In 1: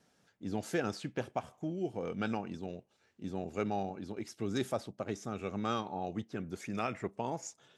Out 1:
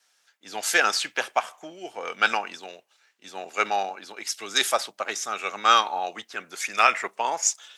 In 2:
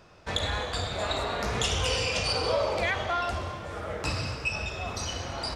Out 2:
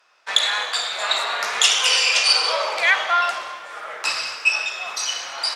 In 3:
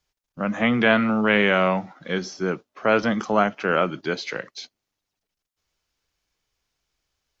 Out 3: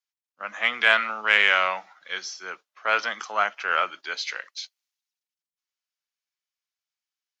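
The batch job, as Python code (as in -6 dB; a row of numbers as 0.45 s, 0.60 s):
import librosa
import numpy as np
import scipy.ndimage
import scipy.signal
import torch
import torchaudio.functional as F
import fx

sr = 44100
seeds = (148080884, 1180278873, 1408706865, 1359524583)

y = fx.cheby_harmonics(x, sr, harmonics=(5,), levels_db=(-33,), full_scale_db=-3.0)
y = scipy.signal.sosfilt(scipy.signal.butter(2, 1200.0, 'highpass', fs=sr, output='sos'), y)
y = fx.band_widen(y, sr, depth_pct=40)
y = librosa.util.normalize(y) * 10.0 ** (-2 / 20.0)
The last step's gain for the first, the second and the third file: +19.5 dB, +11.5 dB, +2.0 dB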